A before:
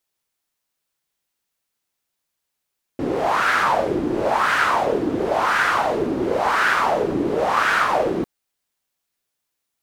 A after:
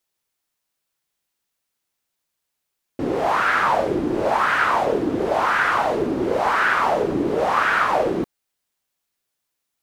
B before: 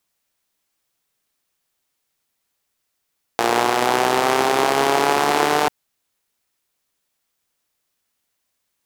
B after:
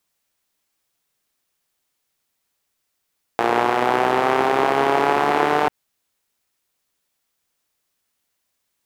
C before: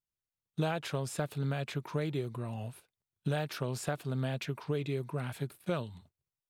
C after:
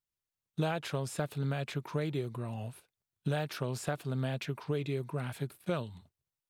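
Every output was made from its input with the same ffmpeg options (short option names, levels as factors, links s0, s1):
-filter_complex "[0:a]acrossover=split=2900[s0][s1];[s1]acompressor=threshold=0.0141:ratio=4:attack=1:release=60[s2];[s0][s2]amix=inputs=2:normalize=0"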